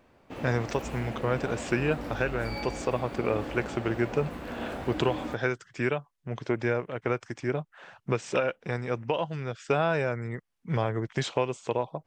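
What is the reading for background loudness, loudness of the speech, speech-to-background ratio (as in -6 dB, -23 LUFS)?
-37.5 LUFS, -30.5 LUFS, 7.0 dB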